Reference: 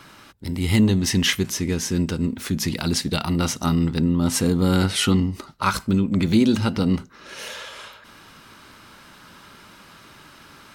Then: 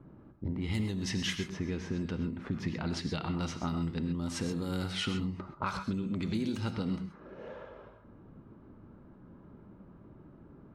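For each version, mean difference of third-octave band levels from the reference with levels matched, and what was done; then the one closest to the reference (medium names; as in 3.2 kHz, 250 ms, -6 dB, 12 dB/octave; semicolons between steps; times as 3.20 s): 7.5 dB: level-controlled noise filter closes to 330 Hz, open at -14.5 dBFS; compression 6:1, threshold -32 dBFS, peak gain reduction 18 dB; gated-style reverb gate 150 ms rising, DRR 7 dB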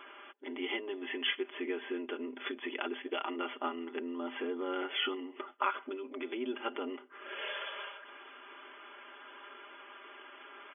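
15.0 dB: comb 5 ms, depth 75%; compression 6:1, threshold -22 dBFS, peak gain reduction 12.5 dB; brick-wall FIR band-pass 260–3500 Hz; trim -5 dB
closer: first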